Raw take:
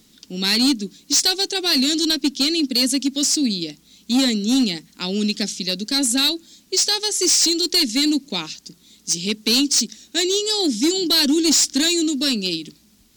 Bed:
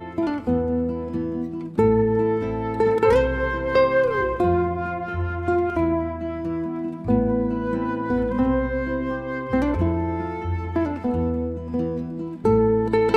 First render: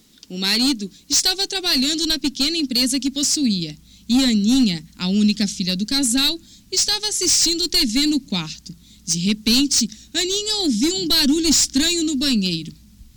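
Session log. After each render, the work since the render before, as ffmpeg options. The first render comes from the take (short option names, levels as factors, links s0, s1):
-af "asubboost=boost=9.5:cutoff=130"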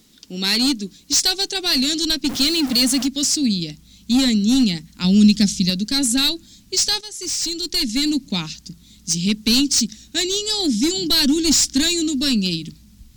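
-filter_complex "[0:a]asettb=1/sr,asplit=3[s0][s1][s2];[s0]atrim=end=2.294[s3];[s1]atrim=start=2.29:end=3.06,asetpts=PTS-STARTPTS,afade=t=in:d=0.004:c=qsin,afade=t=out:st=0.766:d=0.004:c=qsin,aeval=exprs='val(0)+0.5*0.0668*sgn(val(0))':c=same[s4];[s2]atrim=start=3.056[s5];[s3][s4]acrossfade=d=0.004:c1=hsin:c2=qsin[s6];[s6][s5]acrossfade=d=0.004:c1=qsin:c2=hsin,asettb=1/sr,asplit=3[s7][s8][s9];[s7]atrim=end=5.044[s10];[s8]atrim=start=5.04:end=5.7,asetpts=PTS-STARTPTS,afade=t=in:d=0.004:c=qsin,afade=t=out:st=0.656:d=0.004:c=qsin,bass=f=250:g=7,treble=f=4000:g=4[s11];[s9]atrim=start=5.696[s12];[s10][s11]acrossfade=d=0.004:c1=hsin:c2=qsin[s13];[s13][s12]acrossfade=d=0.004:c1=qsin:c2=hsin,asplit=2[s14][s15];[s14]atrim=end=7.01,asetpts=PTS-STARTPTS,afade=t=out:st=7.006:d=0.004:c=hsin:silence=0.223872[s16];[s15]atrim=start=7.01,asetpts=PTS-STARTPTS,afade=t=in:d=1.29:silence=0.223872[s17];[s16][s17]concat=n=2:v=0:a=1"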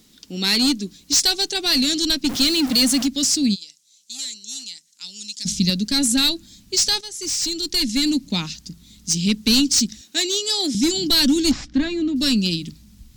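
-filter_complex "[0:a]asplit=3[s0][s1][s2];[s0]afade=t=out:st=3.54:d=0.02[s3];[s1]bandpass=f=7100:t=q:w=1.8,afade=t=in:st=3.54:d=0.02,afade=t=out:st=5.45:d=0.02[s4];[s2]afade=t=in:st=5.45:d=0.02[s5];[s3][s4][s5]amix=inputs=3:normalize=0,asettb=1/sr,asplit=3[s6][s7][s8];[s6]atrim=end=10.014[s9];[s7]atrim=start=10.01:end=10.75,asetpts=PTS-STARTPTS,afade=t=in:d=0.004:c=qsin,afade=t=out:st=0.736:d=0.004:c=qsin,highpass=340[s10];[s8]atrim=start=10.746[s11];[s9][s10]acrossfade=d=0.004:c1=hsin:c2=qsin[s12];[s12][s11]acrossfade=d=0.004:c1=qsin:c2=hsin,asettb=1/sr,asplit=3[s13][s14][s15];[s13]atrim=end=11.514[s16];[s14]atrim=start=11.51:end=12.16,asetpts=PTS-STARTPTS,afade=t=in:d=0.004:c=qsin,afade=t=out:st=0.646:d=0.004:c=qsin,lowpass=1800[s17];[s15]atrim=start=12.156[s18];[s16][s17]acrossfade=d=0.004:c1=hsin:c2=qsin[s19];[s19][s18]acrossfade=d=0.004:c1=qsin:c2=hsin"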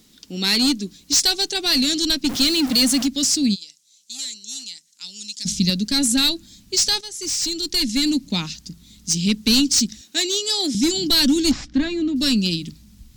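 -af anull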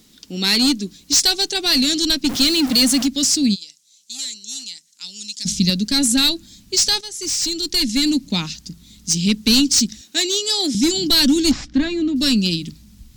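-af "volume=1.26"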